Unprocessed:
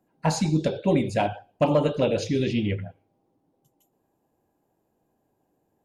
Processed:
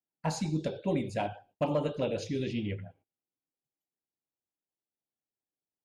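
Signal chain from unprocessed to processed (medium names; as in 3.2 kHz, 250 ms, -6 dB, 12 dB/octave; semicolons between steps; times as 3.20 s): gate -52 dBFS, range -23 dB; trim -8.5 dB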